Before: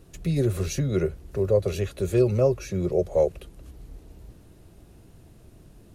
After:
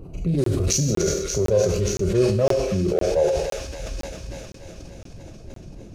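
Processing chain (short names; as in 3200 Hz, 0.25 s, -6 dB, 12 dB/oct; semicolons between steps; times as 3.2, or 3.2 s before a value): Wiener smoothing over 25 samples; reverb removal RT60 1.3 s; on a send at -6 dB: high shelf 2300 Hz +11 dB + reverb RT60 0.70 s, pre-delay 26 ms; on the sum: dynamic EQ 5800 Hz, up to +7 dB, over -54 dBFS, Q 0.91; thin delay 0.289 s, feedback 74%, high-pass 1700 Hz, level -8 dB; in parallel at +3 dB: negative-ratio compressor -32 dBFS, ratio -1; on the sum: crackling interface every 0.51 s, samples 1024, zero, from 0.44; sustainer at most 43 dB/s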